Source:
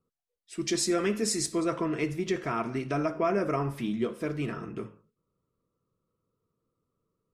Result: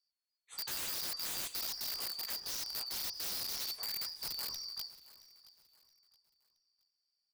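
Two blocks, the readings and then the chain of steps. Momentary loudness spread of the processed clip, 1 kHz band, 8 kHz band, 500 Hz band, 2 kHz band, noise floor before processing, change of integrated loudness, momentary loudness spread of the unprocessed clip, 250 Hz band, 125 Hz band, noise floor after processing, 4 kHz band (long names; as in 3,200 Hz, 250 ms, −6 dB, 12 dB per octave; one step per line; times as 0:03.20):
7 LU, −17.5 dB, −5.5 dB, −27.5 dB, −10.5 dB, −84 dBFS, −7.0 dB, 9 LU, −31.0 dB, −27.0 dB, below −85 dBFS, +2.5 dB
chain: band-splitting scrambler in four parts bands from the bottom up 2341
parametric band 200 Hz −13 dB 2.5 octaves
notch filter 590 Hz, Q 18
in parallel at 0 dB: downward compressor 20 to 1, threshold −34 dBFS, peak gain reduction 13 dB
on the sum: multi-voice chorus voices 2, 0.68 Hz, delay 20 ms, depth 2.8 ms
wrap-around overflow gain 26 dB
on a send: repeating echo 672 ms, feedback 34%, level −19 dB
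on the sum: level −7.5 dB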